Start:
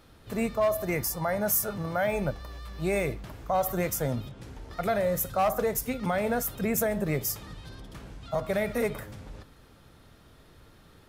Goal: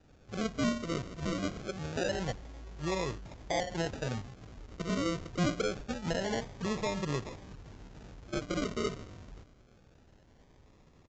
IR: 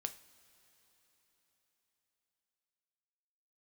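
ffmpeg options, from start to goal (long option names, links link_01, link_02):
-af "aresample=16000,acrusher=samples=14:mix=1:aa=0.000001:lfo=1:lforange=8.4:lforate=0.25,aresample=44100,asetrate=41625,aresample=44100,atempo=1.05946,volume=-5.5dB"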